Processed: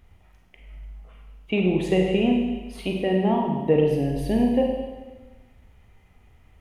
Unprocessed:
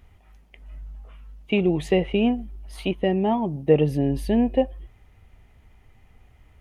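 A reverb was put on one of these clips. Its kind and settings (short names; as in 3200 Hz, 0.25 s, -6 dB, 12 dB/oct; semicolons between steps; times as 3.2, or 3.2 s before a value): Schroeder reverb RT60 1.3 s, combs from 33 ms, DRR 1 dB; gain -2.5 dB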